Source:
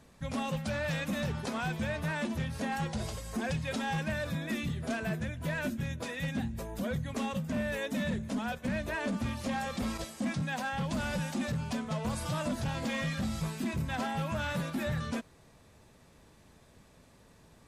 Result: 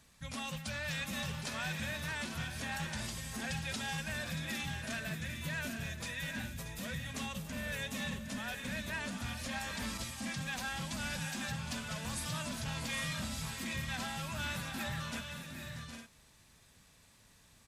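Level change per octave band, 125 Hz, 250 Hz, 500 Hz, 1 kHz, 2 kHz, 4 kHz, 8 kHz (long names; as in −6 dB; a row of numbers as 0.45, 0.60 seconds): −6.0, −8.5, −10.0, −6.0, −1.0, +2.0, +3.5 decibels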